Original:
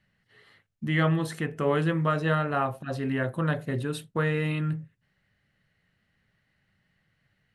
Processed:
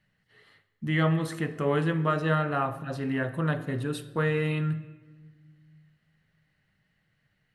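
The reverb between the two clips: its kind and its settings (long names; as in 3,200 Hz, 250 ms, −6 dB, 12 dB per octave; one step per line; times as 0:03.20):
rectangular room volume 1,300 cubic metres, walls mixed, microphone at 0.49 metres
level −1.5 dB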